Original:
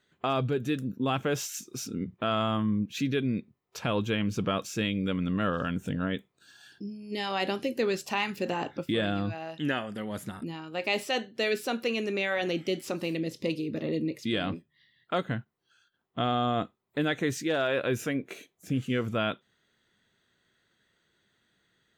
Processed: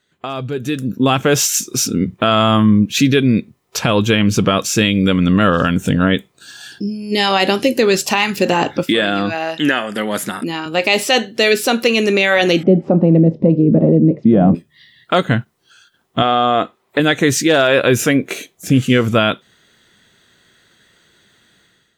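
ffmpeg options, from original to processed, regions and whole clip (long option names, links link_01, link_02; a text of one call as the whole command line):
ffmpeg -i in.wav -filter_complex "[0:a]asettb=1/sr,asplit=3[link_01][link_02][link_03];[link_01]atrim=end=8.834[link_04];[link_02]atrim=start=8.83:end=10.66,asetpts=PTS-STARTPTS,afade=type=in:duration=0.004:curve=qsin,afade=type=out:start_time=1.826:duration=0.004:curve=qsin,highpass=230,equalizer=frequency=1700:width=1.3:gain=3.5[link_05];[link_03]atrim=start=10.656[link_06];[link_04][link_05]acrossfade=duration=0.004:curve1=hsin:curve2=qsin[link_07];[link_07][link_06]acrossfade=duration=0.004:curve1=qsin:curve2=hsin,asettb=1/sr,asplit=3[link_08][link_09][link_10];[link_08]atrim=end=12.634[link_11];[link_09]atrim=start=12.63:end=14.55,asetpts=PTS-STARTPTS,afade=type=in:duration=0.004:curve=qsin,afade=type=out:start_time=1.916:duration=0.004:curve=qsin,lowpass=frequency=700:width_type=q:width=2.1,equalizer=frequency=180:width=1.7:gain=13.5[link_12];[link_10]atrim=start=14.546[link_13];[link_11][link_12]acrossfade=duration=0.004:curve1=hsin:curve2=qsin[link_14];[link_14][link_13]acrossfade=duration=0.004:curve1=qsin:curve2=hsin,asettb=1/sr,asplit=3[link_15][link_16][link_17];[link_15]atrim=end=16.224[link_18];[link_16]atrim=start=16.22:end=17,asetpts=PTS-STARTPTS,afade=type=in:duration=0.004:curve=qsin,afade=type=out:start_time=0.776:duration=0.004:curve=qsin,bass=frequency=250:gain=-13,treble=frequency=4000:gain=-9,acontrast=47[link_19];[link_17]atrim=start=16.996[link_20];[link_18][link_19]acrossfade=duration=0.004:curve1=hsin:curve2=qsin[link_21];[link_21][link_20]acrossfade=duration=0.004:curve1=qsin:curve2=hsin,equalizer=frequency=8700:width=0.42:gain=5,alimiter=limit=-19.5dB:level=0:latency=1:release=194,dynaudnorm=framelen=540:gausssize=3:maxgain=13dB,volume=3.5dB" out.wav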